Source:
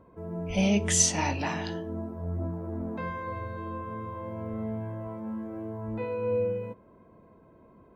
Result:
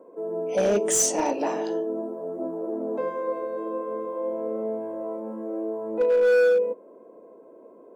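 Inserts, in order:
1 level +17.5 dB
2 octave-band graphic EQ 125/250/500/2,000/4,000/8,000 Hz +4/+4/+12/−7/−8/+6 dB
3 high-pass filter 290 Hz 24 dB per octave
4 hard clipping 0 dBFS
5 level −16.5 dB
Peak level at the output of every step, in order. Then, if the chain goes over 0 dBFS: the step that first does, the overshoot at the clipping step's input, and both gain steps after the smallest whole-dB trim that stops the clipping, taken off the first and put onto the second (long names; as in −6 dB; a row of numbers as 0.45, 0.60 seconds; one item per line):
+8.5, +10.5, +9.5, 0.0, −16.5 dBFS
step 1, 9.5 dB
step 1 +7.5 dB, step 5 −6.5 dB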